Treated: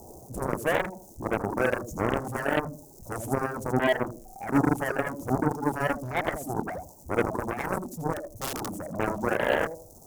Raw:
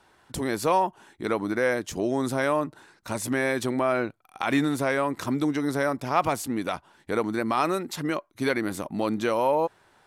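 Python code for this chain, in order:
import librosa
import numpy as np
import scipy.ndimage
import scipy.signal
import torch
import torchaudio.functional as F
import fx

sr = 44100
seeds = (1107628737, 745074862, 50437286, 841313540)

y = x + 0.5 * 10.0 ** (-38.0 / 20.0) * np.sign(x)
y = fx.peak_eq(y, sr, hz=5800.0, db=-11.5, octaves=2.3)
y = fx.echo_feedback(y, sr, ms=80, feedback_pct=35, wet_db=-4.0)
y = fx.dereverb_blind(y, sr, rt60_s=0.88)
y = fx.low_shelf(y, sr, hz=170.0, db=3.0)
y = fx.overflow_wrap(y, sr, gain_db=20.0, at=(8.13, 8.83))
y = fx.dmg_crackle(y, sr, seeds[0], per_s=240.0, level_db=-35.0)
y = scipy.signal.sosfilt(scipy.signal.cheby1(3, 1.0, [700.0, 6200.0], 'bandstop', fs=sr, output='sos'), y)
y = fx.cheby_harmonics(y, sr, harmonics=(7,), levels_db=(-10,), full_scale_db=-13.5)
y = fx.attack_slew(y, sr, db_per_s=310.0)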